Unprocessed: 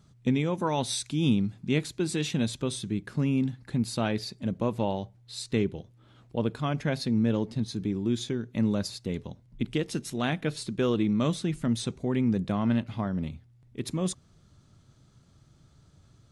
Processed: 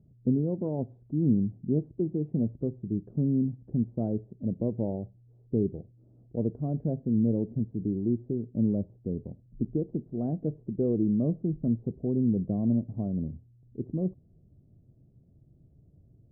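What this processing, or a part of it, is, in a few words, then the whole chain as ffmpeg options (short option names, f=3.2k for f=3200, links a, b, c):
under water: -af "lowpass=f=470:w=0.5412,lowpass=f=470:w=1.3066,equalizer=f=690:t=o:w=0.44:g=7"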